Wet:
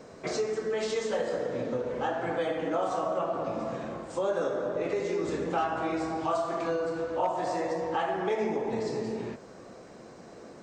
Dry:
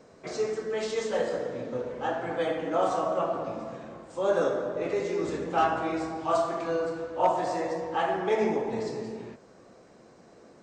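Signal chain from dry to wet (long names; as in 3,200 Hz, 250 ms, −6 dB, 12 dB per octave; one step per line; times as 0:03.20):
downward compressor 3 to 1, threshold −35 dBFS, peak gain reduction 12.5 dB
level +6 dB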